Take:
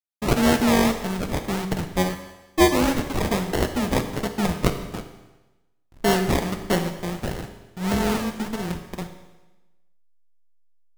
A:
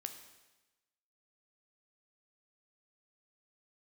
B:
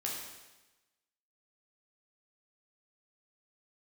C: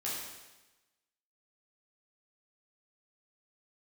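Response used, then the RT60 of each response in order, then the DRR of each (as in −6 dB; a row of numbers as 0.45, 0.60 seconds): A; 1.1, 1.1, 1.1 seconds; 6.0, −3.5, −7.5 decibels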